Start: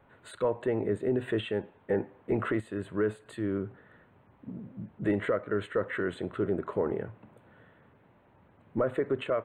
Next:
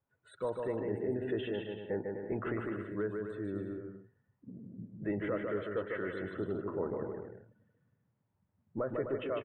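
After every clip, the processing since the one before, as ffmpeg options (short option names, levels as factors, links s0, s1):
-af "afftdn=nr=20:nf=-46,aecho=1:1:150|255|328.5|380|416:0.631|0.398|0.251|0.158|0.1,volume=0.422"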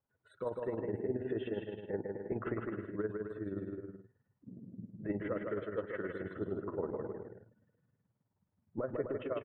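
-af "highshelf=f=3600:g=-12,tremolo=f=19:d=0.61,volume=1.12"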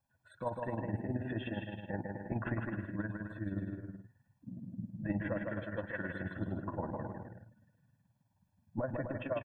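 -af "aecho=1:1:1.2:0.97,volume=1.19"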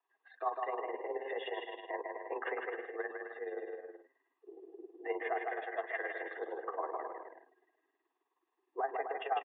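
-af "highpass=f=270:t=q:w=0.5412,highpass=f=270:t=q:w=1.307,lowpass=f=3300:t=q:w=0.5176,lowpass=f=3300:t=q:w=0.7071,lowpass=f=3300:t=q:w=1.932,afreqshift=150,volume=1.33"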